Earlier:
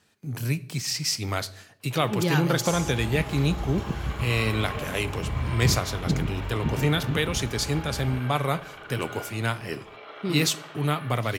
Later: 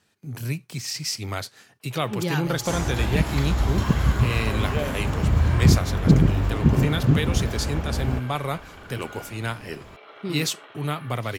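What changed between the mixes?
second sound +10.0 dB
reverb: off

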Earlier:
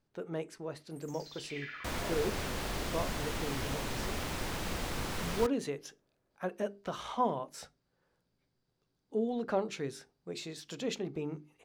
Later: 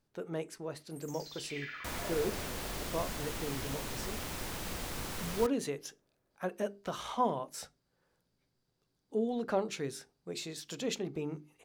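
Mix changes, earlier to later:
second sound −4.0 dB
master: add high-shelf EQ 7,400 Hz +9 dB

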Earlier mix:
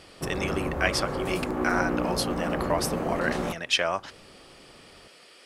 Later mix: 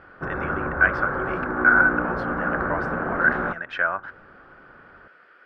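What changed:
speech −5.0 dB
master: add low-pass with resonance 1,500 Hz, resonance Q 10

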